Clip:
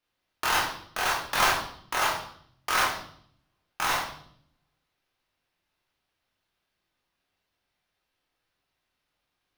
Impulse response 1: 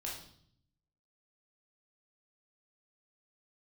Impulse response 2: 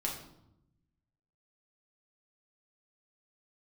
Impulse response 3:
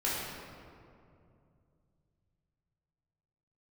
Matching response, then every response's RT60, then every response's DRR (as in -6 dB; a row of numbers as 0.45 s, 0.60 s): 1; 0.60 s, 0.80 s, 2.5 s; -4.0 dB, -3.0 dB, -8.0 dB